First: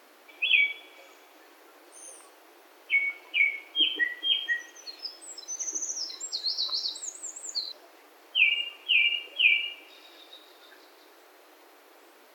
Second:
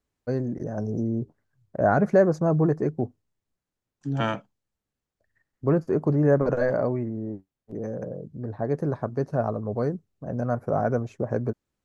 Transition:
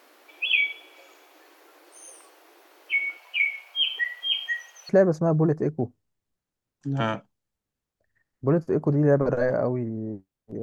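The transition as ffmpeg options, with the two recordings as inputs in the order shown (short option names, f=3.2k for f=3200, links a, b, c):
-filter_complex "[0:a]asettb=1/sr,asplit=3[a][b][c];[a]atrim=end=3.174[d];[b]atrim=start=3.17:end=4.89,asetpts=PTS-STARTPTS,afade=t=in:d=0.004:c=qsin,afade=t=out:st=1.716:d=0.004:c=qsin,highpass=f=600:w=0.5412,highpass=f=600:w=1.3066[e];[c]atrim=start=4.886[f];[d][e]acrossfade=d=0.004:c1=hsin:c2=qsin[g];[g][f]acrossfade=d=0.004:c1=qsin:c2=hsin,apad=whole_dur=10.62,atrim=end=10.62,atrim=end=4.892[h];[1:a]atrim=start=2.088:end=7.82[i];[h][i]acrossfade=d=0.004:c1=hsin:c2=hsin"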